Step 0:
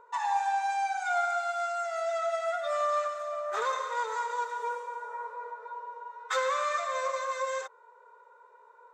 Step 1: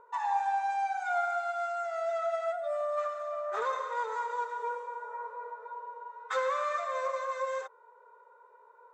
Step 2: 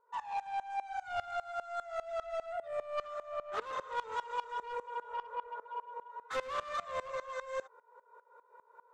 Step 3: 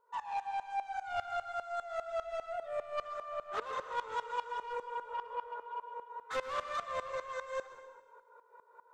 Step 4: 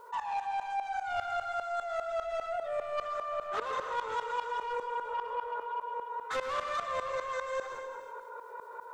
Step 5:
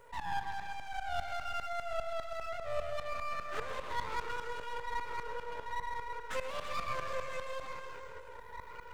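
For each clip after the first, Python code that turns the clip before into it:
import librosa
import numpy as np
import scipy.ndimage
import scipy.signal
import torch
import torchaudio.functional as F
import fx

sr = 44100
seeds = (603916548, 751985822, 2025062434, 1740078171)

y1 = fx.spec_box(x, sr, start_s=2.53, length_s=0.45, low_hz=720.0, high_hz=7700.0, gain_db=-8)
y1 = fx.high_shelf(y1, sr, hz=2500.0, db=-11.0)
y2 = fx.rider(y1, sr, range_db=5, speed_s=2.0)
y2 = 10.0 ** (-31.0 / 20.0) * np.tanh(y2 / 10.0 ** (-31.0 / 20.0))
y2 = fx.tremolo_decay(y2, sr, direction='swelling', hz=5.0, depth_db=21)
y2 = y2 * librosa.db_to_amplitude(3.5)
y3 = fx.rev_plate(y2, sr, seeds[0], rt60_s=1.2, hf_ratio=0.95, predelay_ms=110, drr_db=10.5)
y4 = fx.env_flatten(y3, sr, amount_pct=50)
y4 = y4 * librosa.db_to_amplitude(1.0)
y5 = fx.spec_ripple(y4, sr, per_octave=0.52, drift_hz=1.1, depth_db=10)
y5 = np.maximum(y5, 0.0)
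y5 = y5 + 10.0 ** (-10.0 / 20.0) * np.pad(y5, (int(331 * sr / 1000.0), 0))[:len(y5)]
y5 = y5 * librosa.db_to_amplitude(-1.5)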